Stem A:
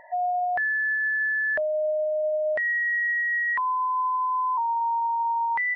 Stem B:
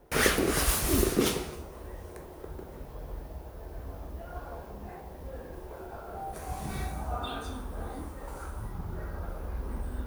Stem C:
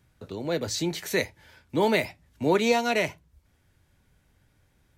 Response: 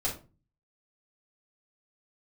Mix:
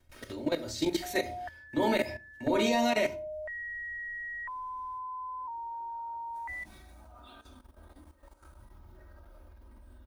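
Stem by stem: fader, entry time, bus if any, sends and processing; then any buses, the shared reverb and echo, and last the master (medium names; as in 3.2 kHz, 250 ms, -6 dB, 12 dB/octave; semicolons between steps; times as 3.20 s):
-7.5 dB, 0.90 s, no send, low-pass 2 kHz; peaking EQ 320 Hz -14 dB 0.95 oct
-16.0 dB, 0.00 s, send -18.5 dB, peaking EQ 3.7 kHz +5 dB 1.6 oct; band-stop 410 Hz, Q 12; auto duck -22 dB, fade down 0.50 s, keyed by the third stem
-3.0 dB, 0.00 s, send -4 dB, peak limiter -20 dBFS, peak gain reduction 8 dB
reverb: on, RT60 0.35 s, pre-delay 4 ms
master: comb 3.2 ms, depth 64%; level held to a coarse grid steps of 13 dB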